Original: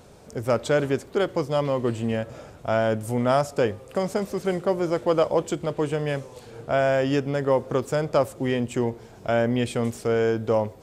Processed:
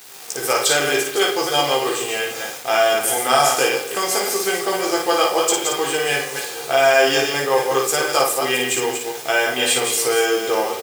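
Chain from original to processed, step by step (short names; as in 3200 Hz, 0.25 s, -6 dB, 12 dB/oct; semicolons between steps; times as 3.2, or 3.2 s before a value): reverse delay 0.136 s, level -5.5 dB; comb 2.5 ms, depth 57%; in parallel at -1.5 dB: compressor, threshold -30 dBFS, peak gain reduction 15 dB; on the sum: tilt +4 dB/oct; on a send at -6 dB: reverb RT60 0.70 s, pre-delay 5 ms; on the sum: requantised 6-bit, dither none; HPF 120 Hz 12 dB/oct; low shelf 310 Hz -6.5 dB; early reflections 15 ms -3.5 dB, 55 ms -3.5 dB; gain +2 dB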